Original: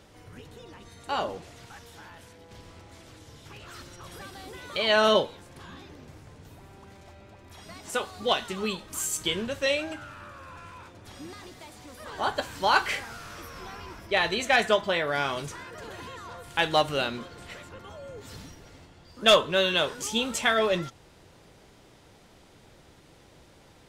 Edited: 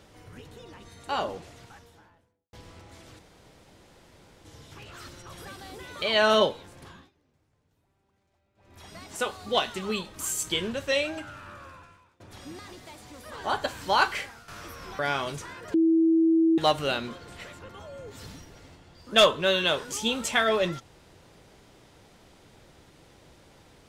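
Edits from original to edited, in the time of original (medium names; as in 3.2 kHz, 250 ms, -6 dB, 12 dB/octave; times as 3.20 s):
1.37–2.53 s: studio fade out
3.19 s: insert room tone 1.26 s
5.57–7.57 s: dip -23 dB, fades 0.28 s
10.40–10.94 s: fade out quadratic, to -20.5 dB
12.72–13.22 s: fade out, to -12 dB
13.73–15.09 s: delete
15.84–16.68 s: bleep 326 Hz -17.5 dBFS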